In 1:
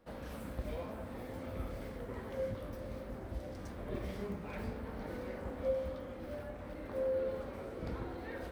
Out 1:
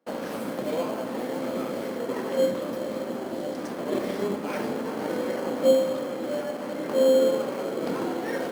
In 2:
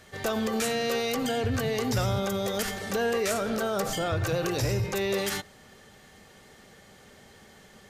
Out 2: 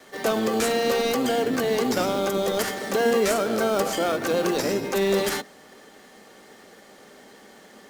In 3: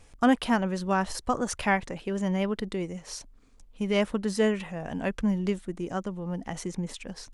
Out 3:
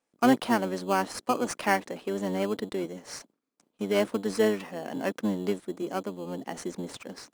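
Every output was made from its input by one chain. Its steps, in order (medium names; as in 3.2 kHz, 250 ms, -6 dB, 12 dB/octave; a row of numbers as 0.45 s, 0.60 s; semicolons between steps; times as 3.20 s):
octave divider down 1 oct, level +1 dB; high-pass 230 Hz 24 dB/octave; gate with hold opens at -49 dBFS; in parallel at -5.5 dB: sample-rate reducer 3.7 kHz, jitter 0%; on the sum: peak normalisation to -9 dBFS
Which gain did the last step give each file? +11.5 dB, +2.5 dB, -2.5 dB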